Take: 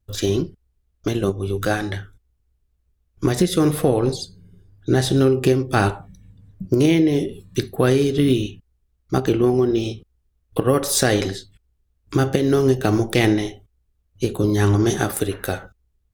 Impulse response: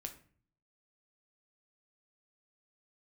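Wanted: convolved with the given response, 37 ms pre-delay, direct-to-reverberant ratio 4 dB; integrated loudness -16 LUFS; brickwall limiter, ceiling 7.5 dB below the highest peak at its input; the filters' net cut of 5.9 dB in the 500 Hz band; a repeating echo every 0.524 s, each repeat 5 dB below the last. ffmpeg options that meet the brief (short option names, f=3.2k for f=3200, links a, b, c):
-filter_complex "[0:a]equalizer=f=500:t=o:g=-8.5,alimiter=limit=-12dB:level=0:latency=1,aecho=1:1:524|1048|1572|2096|2620|3144|3668:0.562|0.315|0.176|0.0988|0.0553|0.031|0.0173,asplit=2[a][b];[1:a]atrim=start_sample=2205,adelay=37[c];[b][c]afir=irnorm=-1:irlink=0,volume=-0.5dB[d];[a][d]amix=inputs=2:normalize=0,volume=6dB"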